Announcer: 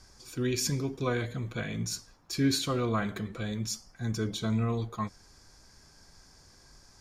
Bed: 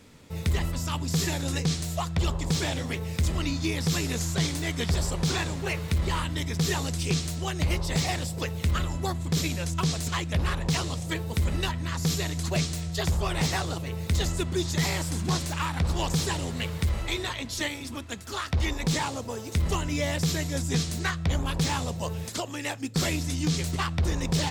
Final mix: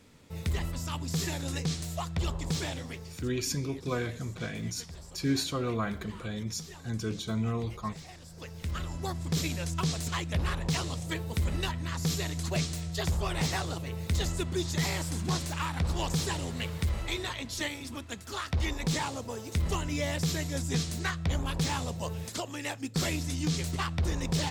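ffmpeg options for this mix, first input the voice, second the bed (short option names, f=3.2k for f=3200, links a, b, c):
-filter_complex "[0:a]adelay=2850,volume=-2dB[a];[1:a]volume=11.5dB,afade=t=out:st=2.57:d=0.74:silence=0.177828,afade=t=in:st=8.21:d=1.09:silence=0.149624[b];[a][b]amix=inputs=2:normalize=0"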